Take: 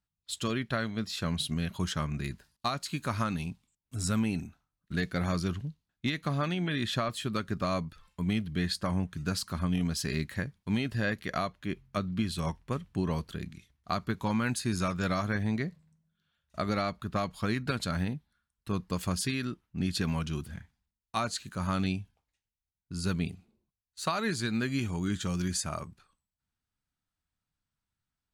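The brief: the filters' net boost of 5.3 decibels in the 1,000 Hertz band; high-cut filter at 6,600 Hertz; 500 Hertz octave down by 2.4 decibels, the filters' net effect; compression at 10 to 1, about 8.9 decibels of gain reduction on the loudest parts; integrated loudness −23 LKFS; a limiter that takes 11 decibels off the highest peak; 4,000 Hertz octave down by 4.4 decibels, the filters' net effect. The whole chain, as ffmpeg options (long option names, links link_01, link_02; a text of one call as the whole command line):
ffmpeg -i in.wav -af "lowpass=6600,equalizer=frequency=500:width_type=o:gain=-6,equalizer=frequency=1000:width_type=o:gain=8.5,equalizer=frequency=4000:width_type=o:gain=-5,acompressor=threshold=-32dB:ratio=10,volume=17.5dB,alimiter=limit=-12dB:level=0:latency=1" out.wav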